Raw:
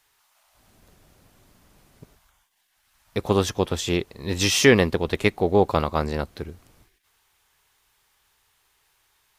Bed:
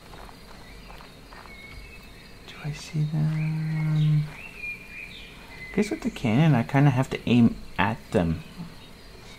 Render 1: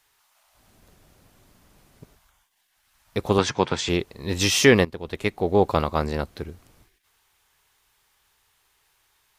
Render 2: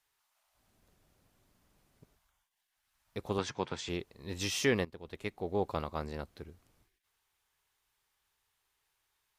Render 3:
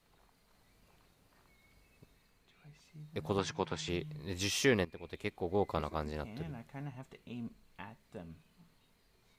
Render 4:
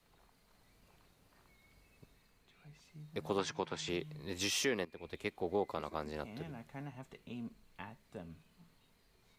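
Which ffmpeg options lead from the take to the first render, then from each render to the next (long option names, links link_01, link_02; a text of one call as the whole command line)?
ffmpeg -i in.wav -filter_complex "[0:a]asettb=1/sr,asplit=3[link_01][link_02][link_03];[link_01]atrim=end=3.384[link_04];[link_02]atrim=start=3.38:end=3.89,asetpts=PTS-STARTPTS,afade=type=in:duration=0.004:curve=qsin,afade=type=out:start_time=0.506:duration=0.004:curve=qsin,highpass=120,equalizer=frequency=140:width_type=q:width=4:gain=8,equalizer=frequency=930:width_type=q:width=4:gain=8,equalizer=frequency=1500:width_type=q:width=4:gain=8,equalizer=frequency=2200:width_type=q:width=4:gain=9,equalizer=frequency=4500:width_type=q:width=4:gain=4,lowpass=frequency=7800:width=0.5412,lowpass=frequency=7800:width=1.3066[link_05];[link_03]atrim=start=3.886[link_06];[link_04][link_05]acrossfade=duration=0.004:curve1=hsin:curve2=qsin[link_07];[link_07][link_06]acrossfade=duration=0.004:curve1=qsin:curve2=hsin,asplit=2[link_08][link_09];[link_08]atrim=end=4.85,asetpts=PTS-STARTPTS,afade=type=out:start_time=4.846:duration=0.004:curve=hsin:silence=0.158489[link_10];[link_09]atrim=start=4.85,asetpts=PTS-STARTPTS,afade=type=in:duration=0.79:silence=0.158489[link_11];[link_10][link_11]concat=n=2:v=0:a=1" out.wav
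ffmpeg -i in.wav -af "volume=-13.5dB" out.wav
ffmpeg -i in.wav -i bed.wav -filter_complex "[1:a]volume=-25dB[link_01];[0:a][link_01]amix=inputs=2:normalize=0" out.wav
ffmpeg -i in.wav -filter_complex "[0:a]acrossover=split=190|1400[link_01][link_02][link_03];[link_01]acompressor=threshold=-51dB:ratio=6[link_04];[link_04][link_02][link_03]amix=inputs=3:normalize=0,alimiter=limit=-22.5dB:level=0:latency=1:release=280" out.wav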